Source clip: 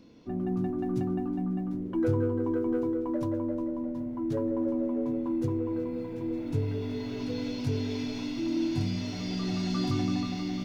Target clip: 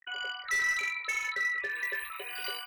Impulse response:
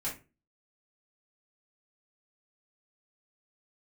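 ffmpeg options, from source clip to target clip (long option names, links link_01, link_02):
-filter_complex "[0:a]lowshelf=frequency=360:width_type=q:width=3:gain=-11.5,afftfilt=real='re*gte(hypot(re,im),0.0178)':imag='im*gte(hypot(re,im),0.0178)':win_size=1024:overlap=0.75,asplit=2[link_01][link_02];[link_02]adelay=99.13,volume=-22dB,highshelf=frequency=4000:gain=-2.23[link_03];[link_01][link_03]amix=inputs=2:normalize=0,aresample=16000,volume=28.5dB,asoftclip=hard,volume=-28.5dB,aresample=44100,asetrate=175959,aresample=44100,acompressor=mode=upward:threshold=-54dB:ratio=2.5,asplit=2[link_04][link_05];[link_05]adelay=21,volume=-6dB[link_06];[link_04][link_06]amix=inputs=2:normalize=0,volume=1dB"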